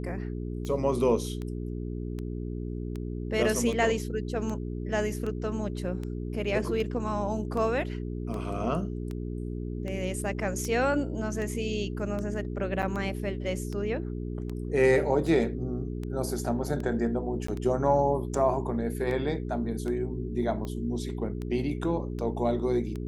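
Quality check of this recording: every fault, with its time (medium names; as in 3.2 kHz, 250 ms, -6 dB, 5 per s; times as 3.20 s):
hum 60 Hz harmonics 7 -34 dBFS
tick 78 rpm -24 dBFS
12.82–12.83 s: dropout 6.7 ms
17.47–17.48 s: dropout 14 ms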